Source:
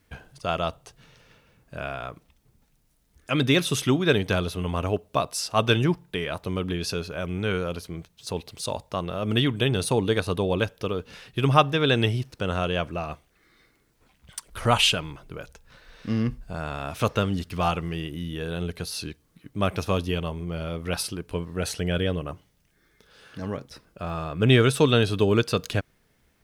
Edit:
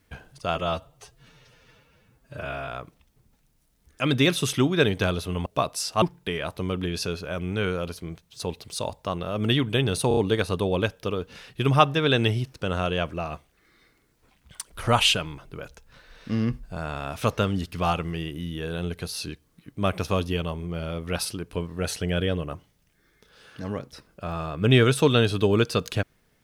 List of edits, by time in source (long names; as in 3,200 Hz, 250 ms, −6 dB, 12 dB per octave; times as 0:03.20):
0:00.55–0:01.97: time-stretch 1.5×
0:04.75–0:05.04: remove
0:05.60–0:05.89: remove
0:09.95: stutter 0.03 s, 4 plays